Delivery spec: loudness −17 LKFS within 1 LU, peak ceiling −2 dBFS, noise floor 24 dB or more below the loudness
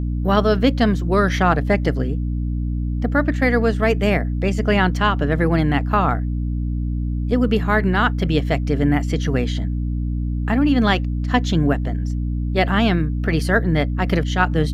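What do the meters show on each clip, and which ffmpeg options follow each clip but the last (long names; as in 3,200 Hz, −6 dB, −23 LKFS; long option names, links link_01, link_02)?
mains hum 60 Hz; hum harmonics up to 300 Hz; level of the hum −20 dBFS; integrated loudness −19.5 LKFS; sample peak −2.5 dBFS; target loudness −17.0 LKFS
→ -af "bandreject=frequency=60:width_type=h:width=6,bandreject=frequency=120:width_type=h:width=6,bandreject=frequency=180:width_type=h:width=6,bandreject=frequency=240:width_type=h:width=6,bandreject=frequency=300:width_type=h:width=6"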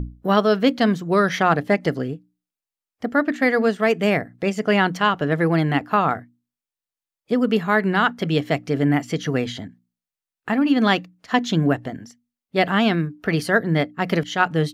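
mains hum none found; integrated loudness −20.5 LKFS; sample peak −3.0 dBFS; target loudness −17.0 LKFS
→ -af "volume=3.5dB,alimiter=limit=-2dB:level=0:latency=1"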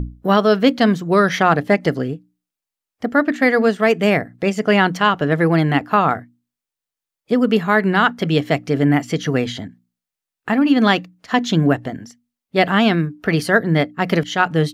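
integrated loudness −17.5 LKFS; sample peak −2.0 dBFS; background noise floor −87 dBFS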